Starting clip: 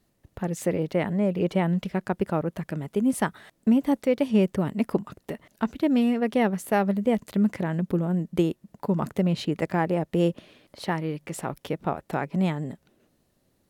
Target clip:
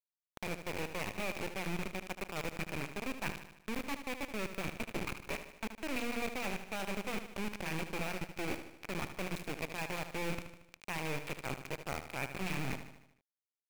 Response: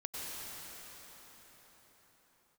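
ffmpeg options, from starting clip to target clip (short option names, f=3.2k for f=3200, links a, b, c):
-filter_complex "[0:a]asuperstop=centerf=3100:order=8:qfactor=4.1,highshelf=f=6.5k:g=-10,bandreject=f=60:t=h:w=6,bandreject=f=120:t=h:w=6,bandreject=f=180:t=h:w=6,bandreject=f=240:t=h:w=6,bandreject=f=300:t=h:w=6,areverse,acompressor=threshold=-39dB:ratio=16,areverse,acrusher=bits=4:dc=4:mix=0:aa=0.000001,equalizer=f=2.4k:w=4.8:g=12.5,asplit=2[a][b];[b]aecho=0:1:76|152|228|304|380|456:0.316|0.171|0.0922|0.0498|0.0269|0.0145[c];[a][c]amix=inputs=2:normalize=0,volume=4.5dB"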